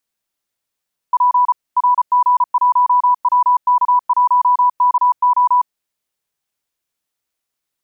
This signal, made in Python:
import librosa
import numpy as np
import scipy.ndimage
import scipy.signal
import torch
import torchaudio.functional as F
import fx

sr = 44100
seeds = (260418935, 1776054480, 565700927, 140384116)

y = fx.morse(sr, text='P RG1WK1KO', wpm=34, hz=988.0, level_db=-9.0)